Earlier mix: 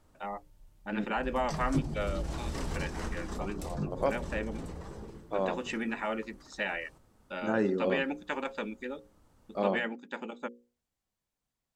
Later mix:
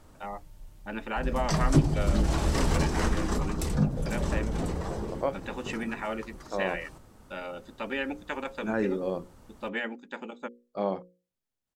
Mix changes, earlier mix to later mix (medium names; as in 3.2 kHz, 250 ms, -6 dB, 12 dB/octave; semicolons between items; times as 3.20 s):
second voice: entry +1.20 s; background +10.0 dB